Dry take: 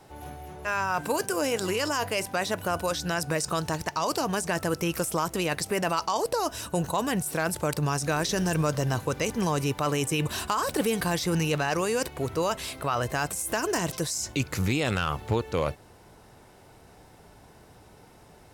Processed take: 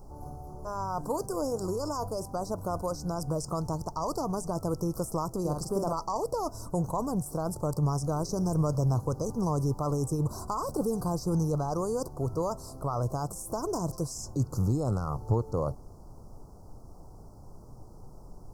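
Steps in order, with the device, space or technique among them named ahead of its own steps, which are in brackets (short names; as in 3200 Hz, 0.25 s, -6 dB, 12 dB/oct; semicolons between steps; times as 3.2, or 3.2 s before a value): car interior (bell 120 Hz +7 dB 0.83 oct; high shelf 4000 Hz -6.5 dB; brown noise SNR 15 dB); inverse Chebyshev band-stop 1700–3600 Hz, stop band 40 dB; 5.4–5.93 doubler 46 ms -4 dB; gain -3.5 dB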